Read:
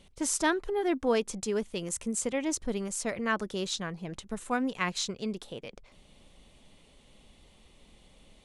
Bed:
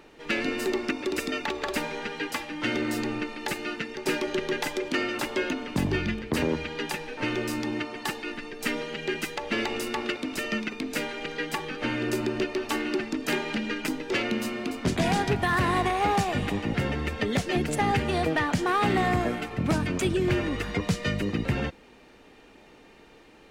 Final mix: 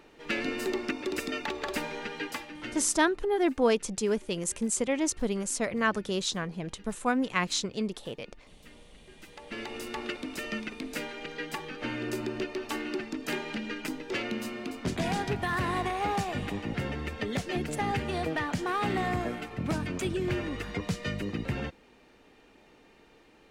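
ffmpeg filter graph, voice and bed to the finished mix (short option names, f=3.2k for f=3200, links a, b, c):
-filter_complex "[0:a]adelay=2550,volume=2.5dB[a];[1:a]volume=17.5dB,afade=t=out:st=2.21:d=0.72:silence=0.0707946,afade=t=in:st=9.13:d=0.9:silence=0.0891251[b];[a][b]amix=inputs=2:normalize=0"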